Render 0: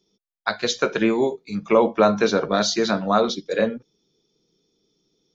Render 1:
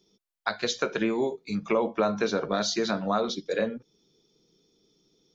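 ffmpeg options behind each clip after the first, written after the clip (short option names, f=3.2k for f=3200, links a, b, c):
-af "acompressor=threshold=-32dB:ratio=2,volume=2dB"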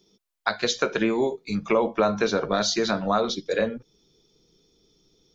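-af "asubboost=boost=3.5:cutoff=100,volume=4dB"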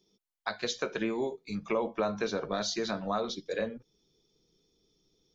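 -af "bandreject=f=1.4k:w=22,volume=-8.5dB"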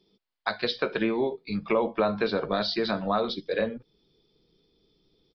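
-af "aresample=11025,aresample=44100,volume=5.5dB"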